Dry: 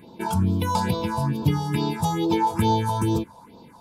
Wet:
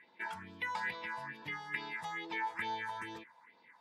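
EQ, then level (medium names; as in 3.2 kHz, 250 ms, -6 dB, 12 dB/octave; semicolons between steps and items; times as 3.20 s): band-pass filter 1.9 kHz, Q 13; +11.5 dB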